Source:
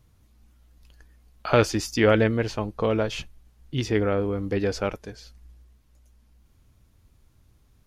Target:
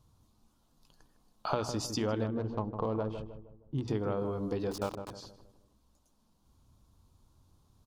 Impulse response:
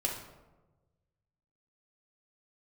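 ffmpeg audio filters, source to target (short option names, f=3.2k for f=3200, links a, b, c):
-filter_complex "[0:a]asettb=1/sr,asplit=3[a][b][c];[a]atrim=end=4.714[d];[b]atrim=start=4.71:end=5.11,asetpts=PTS-STARTPTS,afade=t=in:d=0.004:c=qsin,afade=t=out:st=0.396:d=0.004:c=qsin,aeval=exprs='val(0)*gte(abs(val(0)),0.0316)':c=same[e];[c]atrim=start=5.106[f];[d][e]acrossfade=d=0.004:c1=hsin:c2=qsin[g];[g][f]acrossfade=d=0.004:c1=qsin:c2=hsin,acompressor=threshold=-25dB:ratio=6,bandreject=f=60:t=h:w=6,bandreject=f=120:t=h:w=6,bandreject=f=180:t=h:w=6,bandreject=f=240:t=h:w=6,bandreject=f=300:t=h:w=6,asettb=1/sr,asplit=3[h][i][j];[h]atrim=end=2.264[k];[i]atrim=start=2.26:end=3.88,asetpts=PTS-STARTPTS,afade=t=in:d=0.004:c=qsin,afade=t=out:st=1.616:d=0.004:c=qsin,adynamicsmooth=sensitivity=1:basefreq=1.1k[l];[j]atrim=start=3.876[m];[k][l]acrossfade=d=0.004:c1=hsin:c2=qsin[n];[n][m]acrossfade=d=0.004:c1=qsin:c2=hsin,equalizer=f=125:t=o:w=1:g=4,equalizer=f=250:t=o:w=1:g=4,equalizer=f=1k:t=o:w=1:g=11,equalizer=f=2k:t=o:w=1:g=-11,equalizer=f=4k:t=o:w=1:g=6,equalizer=f=8k:t=o:w=1:g=4,asplit=2[o][p];[p]adelay=156,lowpass=f=930:p=1,volume=-7dB,asplit=2[q][r];[r]adelay=156,lowpass=f=930:p=1,volume=0.46,asplit=2[s][t];[t]adelay=156,lowpass=f=930:p=1,volume=0.46,asplit=2[u][v];[v]adelay=156,lowpass=f=930:p=1,volume=0.46,asplit=2[w][x];[x]adelay=156,lowpass=f=930:p=1,volume=0.46[y];[q][s][u][w][y]amix=inputs=5:normalize=0[z];[o][z]amix=inputs=2:normalize=0,volume=-7.5dB"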